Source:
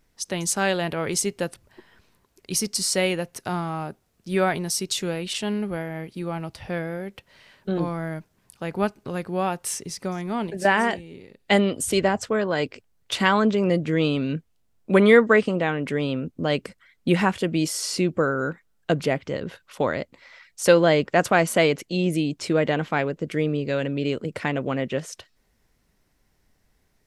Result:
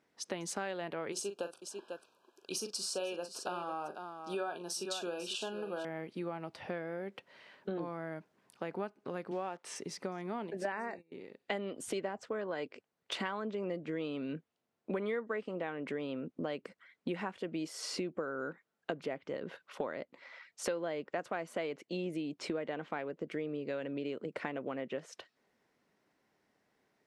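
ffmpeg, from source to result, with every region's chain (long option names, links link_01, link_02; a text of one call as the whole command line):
ffmpeg -i in.wav -filter_complex "[0:a]asettb=1/sr,asplit=3[link_01][link_02][link_03];[link_01]atrim=end=1.124[link_04];[link_02]atrim=start=1.12:end=5.85,asetpts=PTS-STARTPTS,afade=type=in:duration=0.004:curve=qsin,afade=type=out:start_time=4.726:duration=0.004:curve=qsin,asuperstop=centerf=2000:order=20:qfactor=2.9,bass=frequency=250:gain=-13,treble=frequency=4000:gain=3,aecho=1:1:40|496:0.316|0.237,atrim=end_sample=208593[link_05];[link_03]atrim=start=5.846[link_06];[link_04][link_05]acrossfade=duration=0.004:curve1=hsin:curve2=qsin[link_07];[link_07][link_06]acrossfade=duration=0.004:curve1=qsin:curve2=hsin,asettb=1/sr,asplit=3[link_08][link_09][link_10];[link_08]atrim=end=9.314[link_11];[link_09]atrim=start=9.31:end=9.76,asetpts=PTS-STARTPTS,afade=type=in:duration=0.004:curve=qsin,afade=type=out:start_time=0.446:duration=0.004:curve=qsin,acrusher=bits=8:dc=4:mix=0:aa=0.000001,highpass=180,lowpass=7500[link_12];[link_10]atrim=start=9.756[link_13];[link_11][link_12]acrossfade=duration=0.004:curve1=hsin:curve2=qsin[link_14];[link_14][link_13]acrossfade=duration=0.004:curve1=qsin:curve2=hsin,asettb=1/sr,asplit=3[link_15][link_16][link_17];[link_15]atrim=end=10.724[link_18];[link_16]atrim=start=10.72:end=11.12,asetpts=PTS-STARTPTS,afade=type=in:duration=0.004:curve=qsin,afade=type=out:start_time=0.396:duration=0.004:curve=qsin,agate=range=-21dB:threshold=-38dB:ratio=16:release=100:detection=peak,asuperstop=centerf=3200:order=20:qfactor=3.6[link_19];[link_17]atrim=start=11.116[link_20];[link_18][link_19]acrossfade=duration=0.004:curve1=hsin:curve2=qsin[link_21];[link_21][link_20]acrossfade=duration=0.004:curve1=qsin:curve2=hsin,highpass=260,aemphasis=mode=reproduction:type=75kf,acompressor=threshold=-34dB:ratio=5,volume=-1.5dB" out.wav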